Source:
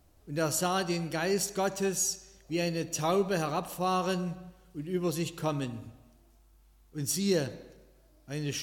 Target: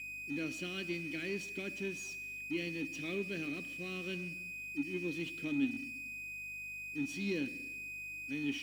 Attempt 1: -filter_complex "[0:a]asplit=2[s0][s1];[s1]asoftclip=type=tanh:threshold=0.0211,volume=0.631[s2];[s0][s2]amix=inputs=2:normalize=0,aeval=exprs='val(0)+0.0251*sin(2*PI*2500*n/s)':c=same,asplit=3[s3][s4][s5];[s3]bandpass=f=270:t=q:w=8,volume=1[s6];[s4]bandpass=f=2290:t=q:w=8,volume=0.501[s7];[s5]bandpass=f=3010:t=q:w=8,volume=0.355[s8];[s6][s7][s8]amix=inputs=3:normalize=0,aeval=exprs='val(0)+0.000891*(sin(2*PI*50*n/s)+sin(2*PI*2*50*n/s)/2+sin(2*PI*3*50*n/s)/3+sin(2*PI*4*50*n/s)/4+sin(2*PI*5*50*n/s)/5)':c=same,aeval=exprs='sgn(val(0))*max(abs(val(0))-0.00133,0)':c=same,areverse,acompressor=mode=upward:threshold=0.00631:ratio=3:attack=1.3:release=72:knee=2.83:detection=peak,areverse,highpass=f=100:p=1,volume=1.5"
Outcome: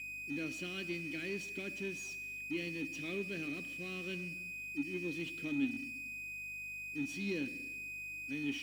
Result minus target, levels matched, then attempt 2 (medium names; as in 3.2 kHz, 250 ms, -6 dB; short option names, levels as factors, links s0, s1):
saturation: distortion +9 dB
-filter_complex "[0:a]asplit=2[s0][s1];[s1]asoftclip=type=tanh:threshold=0.0668,volume=0.631[s2];[s0][s2]amix=inputs=2:normalize=0,aeval=exprs='val(0)+0.0251*sin(2*PI*2500*n/s)':c=same,asplit=3[s3][s4][s5];[s3]bandpass=f=270:t=q:w=8,volume=1[s6];[s4]bandpass=f=2290:t=q:w=8,volume=0.501[s7];[s5]bandpass=f=3010:t=q:w=8,volume=0.355[s8];[s6][s7][s8]amix=inputs=3:normalize=0,aeval=exprs='val(0)+0.000891*(sin(2*PI*50*n/s)+sin(2*PI*2*50*n/s)/2+sin(2*PI*3*50*n/s)/3+sin(2*PI*4*50*n/s)/4+sin(2*PI*5*50*n/s)/5)':c=same,aeval=exprs='sgn(val(0))*max(abs(val(0))-0.00133,0)':c=same,areverse,acompressor=mode=upward:threshold=0.00631:ratio=3:attack=1.3:release=72:knee=2.83:detection=peak,areverse,highpass=f=100:p=1,volume=1.5"